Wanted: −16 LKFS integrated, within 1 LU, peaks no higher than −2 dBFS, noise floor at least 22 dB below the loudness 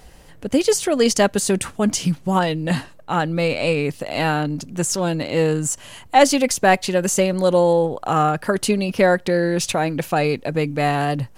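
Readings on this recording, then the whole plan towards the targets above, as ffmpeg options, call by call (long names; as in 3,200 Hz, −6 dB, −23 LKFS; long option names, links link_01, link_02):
integrated loudness −19.5 LKFS; sample peak −1.5 dBFS; target loudness −16.0 LKFS
→ -af "volume=3.5dB,alimiter=limit=-2dB:level=0:latency=1"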